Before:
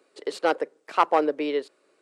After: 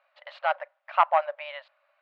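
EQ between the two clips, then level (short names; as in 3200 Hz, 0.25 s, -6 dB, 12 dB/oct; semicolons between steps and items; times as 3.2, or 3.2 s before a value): brick-wall FIR high-pass 550 Hz; LPF 3000 Hz 24 dB/oct; 0.0 dB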